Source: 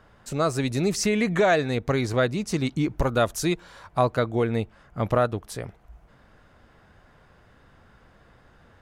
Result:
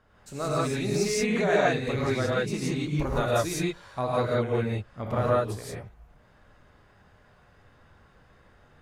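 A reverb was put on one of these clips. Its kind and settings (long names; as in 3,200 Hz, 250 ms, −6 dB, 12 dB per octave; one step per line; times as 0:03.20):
reverb whose tail is shaped and stops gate 200 ms rising, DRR −7 dB
level −9.5 dB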